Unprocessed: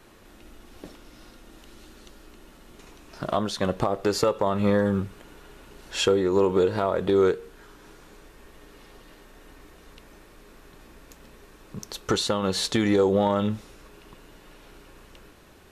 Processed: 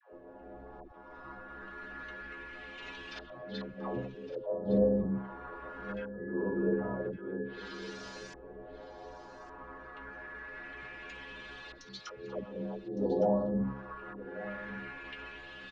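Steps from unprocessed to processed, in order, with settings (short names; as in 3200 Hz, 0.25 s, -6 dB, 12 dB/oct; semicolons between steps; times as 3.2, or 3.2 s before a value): local time reversal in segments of 42 ms; treble ducked by the level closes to 370 Hz, closed at -21 dBFS; Chebyshev low-pass 7000 Hz, order 2; low shelf 200 Hz -9.5 dB; in parallel at 0 dB: compressor, threshold -40 dBFS, peak gain reduction 15.5 dB; on the sum: whine 1700 Hz -42 dBFS; metallic resonator 63 Hz, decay 0.53 s, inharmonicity 0.008; LFO low-pass saw up 0.24 Hz 530–6000 Hz; auto swell 0.339 s; dispersion lows, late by 0.125 s, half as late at 500 Hz; on a send: echo 1.161 s -14.5 dB; on the sum: gain +8 dB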